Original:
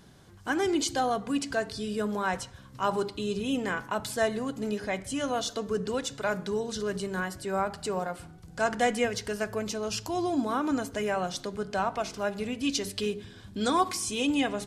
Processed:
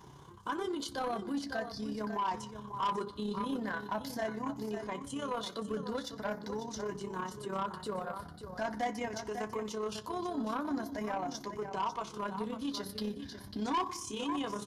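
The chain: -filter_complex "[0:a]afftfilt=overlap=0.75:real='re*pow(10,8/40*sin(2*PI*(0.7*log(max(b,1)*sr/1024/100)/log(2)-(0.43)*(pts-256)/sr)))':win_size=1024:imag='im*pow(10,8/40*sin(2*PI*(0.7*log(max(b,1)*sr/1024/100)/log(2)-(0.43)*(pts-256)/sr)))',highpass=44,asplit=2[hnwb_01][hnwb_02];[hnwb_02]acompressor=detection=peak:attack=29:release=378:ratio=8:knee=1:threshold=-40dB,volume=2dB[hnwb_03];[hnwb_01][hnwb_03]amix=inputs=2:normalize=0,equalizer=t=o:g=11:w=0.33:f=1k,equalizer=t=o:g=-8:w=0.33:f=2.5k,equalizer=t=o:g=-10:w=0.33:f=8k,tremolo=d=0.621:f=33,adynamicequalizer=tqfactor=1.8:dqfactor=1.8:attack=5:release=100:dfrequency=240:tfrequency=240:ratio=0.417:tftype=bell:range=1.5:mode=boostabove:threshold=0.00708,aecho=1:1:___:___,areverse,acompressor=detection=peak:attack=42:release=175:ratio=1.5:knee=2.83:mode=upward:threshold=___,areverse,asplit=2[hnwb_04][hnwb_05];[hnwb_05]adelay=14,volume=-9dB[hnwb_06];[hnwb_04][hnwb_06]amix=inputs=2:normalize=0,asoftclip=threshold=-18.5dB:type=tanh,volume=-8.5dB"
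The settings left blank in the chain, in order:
547, 0.299, -37dB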